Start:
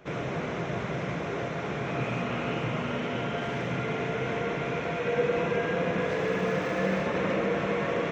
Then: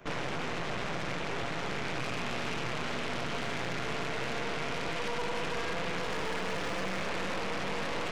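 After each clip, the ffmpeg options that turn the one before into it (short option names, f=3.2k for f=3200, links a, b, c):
-filter_complex "[0:a]asoftclip=type=tanh:threshold=-29dB,acrossover=split=520|1300[a][b][c];[a]acompressor=threshold=-40dB:ratio=4[d];[b]acompressor=threshold=-45dB:ratio=4[e];[c]acompressor=threshold=-40dB:ratio=4[f];[d][e][f]amix=inputs=3:normalize=0,aeval=exprs='0.0531*(cos(1*acos(clip(val(0)/0.0531,-1,1)))-cos(1*PI/2))+0.0188*(cos(6*acos(clip(val(0)/0.0531,-1,1)))-cos(6*PI/2))':c=same"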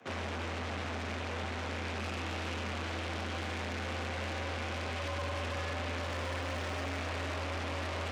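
-af "afreqshift=84,volume=-3.5dB"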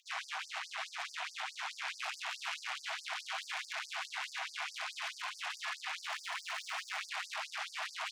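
-filter_complex "[0:a]asplit=2[a][b];[b]alimiter=level_in=8dB:limit=-24dB:level=0:latency=1,volume=-8dB,volume=0.5dB[c];[a][c]amix=inputs=2:normalize=0,afftfilt=real='re*gte(b*sr/1024,610*pow(4600/610,0.5+0.5*sin(2*PI*4.7*pts/sr)))':imag='im*gte(b*sr/1024,610*pow(4600/610,0.5+0.5*sin(2*PI*4.7*pts/sr)))':win_size=1024:overlap=0.75,volume=-2dB"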